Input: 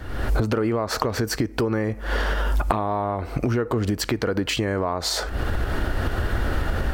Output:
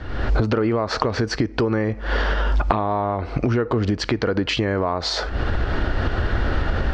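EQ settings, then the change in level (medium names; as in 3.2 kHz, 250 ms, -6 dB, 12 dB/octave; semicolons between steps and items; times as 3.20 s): low-pass 5.3 kHz 24 dB/octave; +2.5 dB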